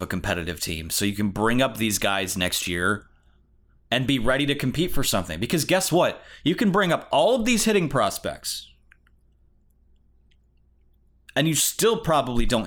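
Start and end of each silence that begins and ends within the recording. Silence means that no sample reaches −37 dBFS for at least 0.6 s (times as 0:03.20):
0:03.00–0:03.92
0:08.92–0:11.29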